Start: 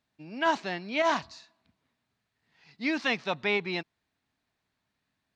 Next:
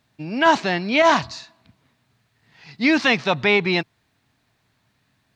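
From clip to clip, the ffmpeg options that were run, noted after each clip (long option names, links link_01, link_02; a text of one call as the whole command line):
ffmpeg -i in.wav -filter_complex "[0:a]equalizer=frequency=120:width=2.5:gain=8,asplit=2[link_01][link_02];[link_02]alimiter=limit=-24dB:level=0:latency=1,volume=0dB[link_03];[link_01][link_03]amix=inputs=2:normalize=0,volume=7dB" out.wav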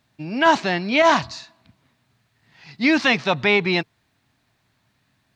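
ffmpeg -i in.wav -af "bandreject=frequency=450:width=14" out.wav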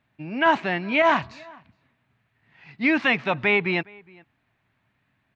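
ffmpeg -i in.wav -filter_complex "[0:a]highshelf=frequency=3500:width_type=q:width=1.5:gain=-11,asplit=2[link_01][link_02];[link_02]adelay=414,volume=-25dB,highshelf=frequency=4000:gain=-9.32[link_03];[link_01][link_03]amix=inputs=2:normalize=0,volume=-4dB" out.wav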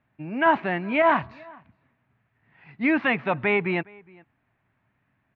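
ffmpeg -i in.wav -af "lowpass=2100" out.wav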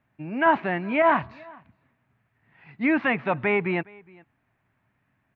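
ffmpeg -i in.wav -filter_complex "[0:a]acrossover=split=3000[link_01][link_02];[link_02]acompressor=threshold=-47dB:ratio=4:attack=1:release=60[link_03];[link_01][link_03]amix=inputs=2:normalize=0" out.wav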